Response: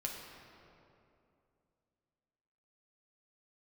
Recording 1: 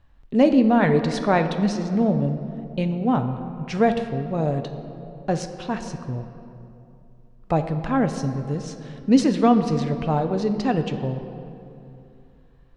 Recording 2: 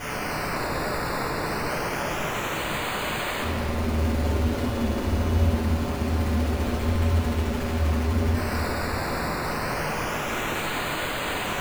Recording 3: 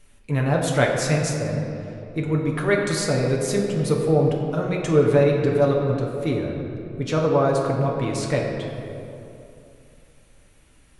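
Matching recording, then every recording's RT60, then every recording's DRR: 3; 2.7, 2.7, 2.7 seconds; 7.0, −10.5, −1.5 decibels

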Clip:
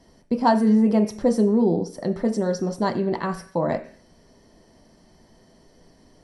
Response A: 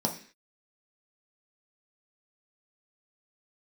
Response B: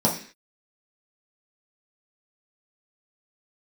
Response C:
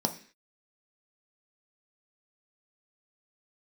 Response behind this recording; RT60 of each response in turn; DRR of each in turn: C; 0.45, 0.45, 0.45 seconds; 1.0, −4.0, 5.0 decibels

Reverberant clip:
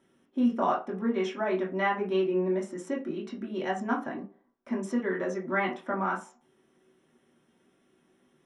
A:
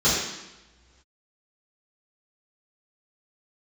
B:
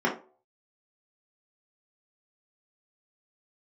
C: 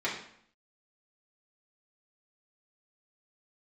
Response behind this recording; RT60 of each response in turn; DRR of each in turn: B; non-exponential decay, 0.40 s, 0.65 s; −12.0, −4.0, −6.5 decibels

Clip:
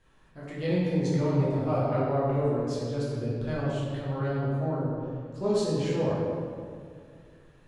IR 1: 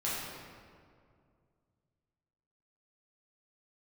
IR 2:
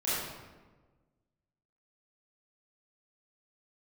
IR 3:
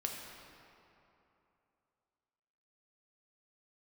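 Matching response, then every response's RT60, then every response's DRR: 1; 2.2, 1.3, 3.0 seconds; −8.5, −11.5, 0.0 decibels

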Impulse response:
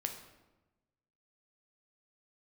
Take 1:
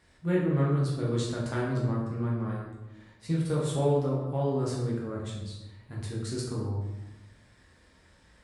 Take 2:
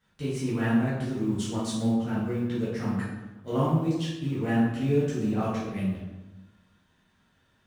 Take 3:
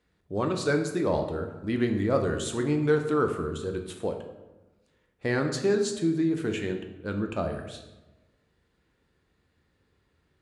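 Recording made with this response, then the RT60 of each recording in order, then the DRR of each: 3; 1.1, 1.1, 1.1 seconds; −5.5, −10.5, 4.0 decibels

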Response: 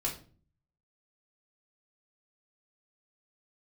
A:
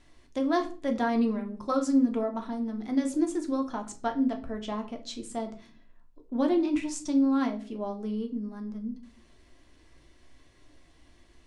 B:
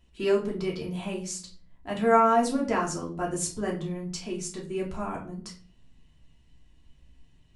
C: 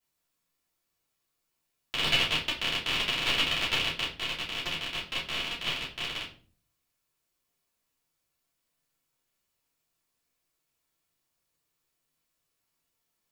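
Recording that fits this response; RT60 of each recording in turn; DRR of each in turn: B; 0.40, 0.40, 0.40 seconds; 3.5, −3.0, −11.0 decibels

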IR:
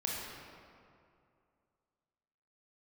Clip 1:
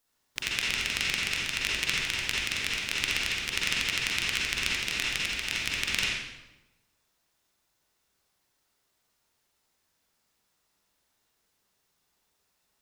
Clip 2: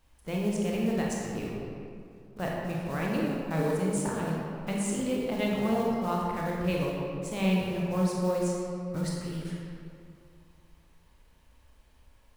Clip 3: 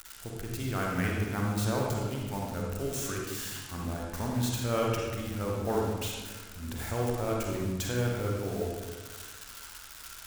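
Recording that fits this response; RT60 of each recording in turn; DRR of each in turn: 2; 1.0, 2.4, 1.4 seconds; −5.5, −3.5, −2.5 decibels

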